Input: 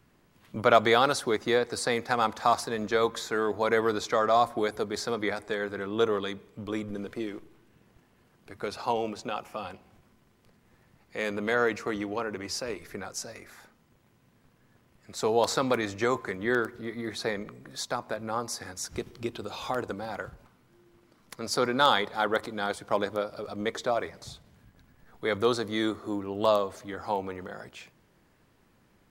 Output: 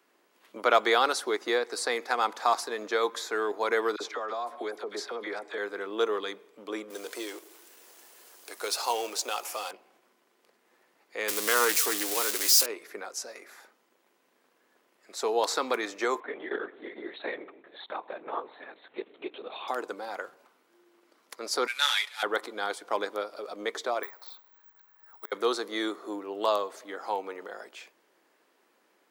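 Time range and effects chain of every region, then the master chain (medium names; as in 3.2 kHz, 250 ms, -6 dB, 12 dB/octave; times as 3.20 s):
3.96–5.58 s: treble shelf 6.7 kHz -9.5 dB + compression 5:1, threshold -28 dBFS + phase dispersion lows, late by 46 ms, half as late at 1.2 kHz
6.90–9.71 s: companding laws mixed up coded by mu + tone controls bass -14 dB, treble +15 dB
11.28–12.66 s: zero-crossing glitches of -21.5 dBFS + treble shelf 2.7 kHz +9 dB + loudspeaker Doppler distortion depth 0.15 ms
16.20–19.68 s: peaking EQ 1.4 kHz -7 dB 0.23 oct + LPC vocoder at 8 kHz whisper + transformer saturation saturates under 170 Hz
21.67–22.23 s: CVSD coder 64 kbps + resonant high-pass 2.4 kHz, resonance Q 2.1 + comb 6.9 ms, depth 70%
24.03–25.32 s: FFT filter 130 Hz 0 dB, 220 Hz -29 dB, 370 Hz -8 dB, 550 Hz -11 dB, 940 Hz +4 dB, 1.5 kHz +1 dB, 3 kHz -6 dB, 4.2 kHz -3 dB, 7.3 kHz -20 dB + inverted gate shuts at -25 dBFS, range -31 dB + careless resampling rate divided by 2×, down none, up zero stuff
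whole clip: dynamic bell 580 Hz, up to -5 dB, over -38 dBFS, Q 3; high-pass 330 Hz 24 dB/octave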